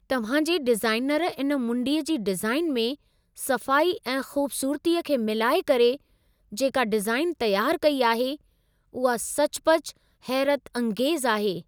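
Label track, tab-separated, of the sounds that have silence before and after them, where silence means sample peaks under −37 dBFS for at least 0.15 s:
3.380000	5.960000	sound
6.520000	8.360000	sound
8.950000	9.910000	sound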